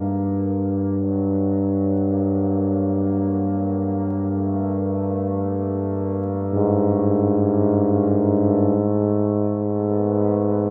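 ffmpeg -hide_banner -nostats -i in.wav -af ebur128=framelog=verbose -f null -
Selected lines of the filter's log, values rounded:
Integrated loudness:
  I:         -20.9 LUFS
  Threshold: -30.9 LUFS
Loudness range:
  LRA:         3.6 LU
  Threshold: -40.9 LUFS
  LRA low:   -22.8 LUFS
  LRA high:  -19.2 LUFS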